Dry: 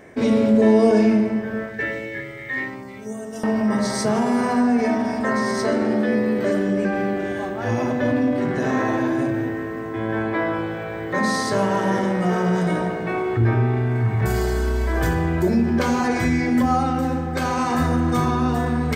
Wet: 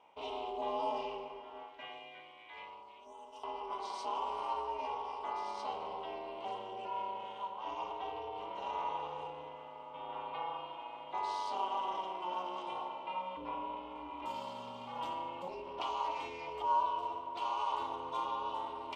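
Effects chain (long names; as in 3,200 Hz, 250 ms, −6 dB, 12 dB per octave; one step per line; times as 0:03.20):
ring modulation 180 Hz
pair of resonant band-passes 1,700 Hz, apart 1.6 octaves
level −1 dB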